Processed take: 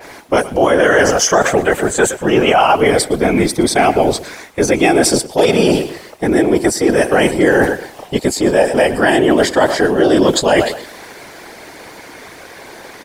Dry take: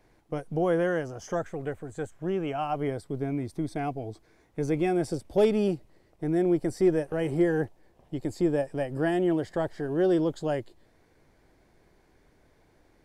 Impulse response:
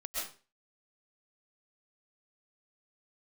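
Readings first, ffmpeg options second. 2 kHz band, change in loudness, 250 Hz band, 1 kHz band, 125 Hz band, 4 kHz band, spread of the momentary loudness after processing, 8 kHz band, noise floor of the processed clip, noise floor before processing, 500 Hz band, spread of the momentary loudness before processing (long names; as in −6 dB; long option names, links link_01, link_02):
+22.5 dB, +15.0 dB, +12.5 dB, +19.5 dB, +9.5 dB, +26.0 dB, 7 LU, +30.0 dB, −37 dBFS, −63 dBFS, +15.0 dB, 12 LU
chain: -af "aecho=1:1:117|234:0.126|0.0327,areverse,acompressor=threshold=-34dB:ratio=16,areverse,highpass=frequency=850:poles=1,afftfilt=real='hypot(re,im)*cos(2*PI*random(0))':imag='hypot(re,im)*sin(2*PI*random(1))':win_size=512:overlap=0.75,acontrast=42,alimiter=level_in=35.5dB:limit=-1dB:release=50:level=0:latency=1,adynamicequalizer=threshold=0.0355:dfrequency=2400:dqfactor=0.7:tfrequency=2400:tqfactor=0.7:attack=5:release=100:ratio=0.375:range=1.5:mode=boostabove:tftype=highshelf,volume=-1dB"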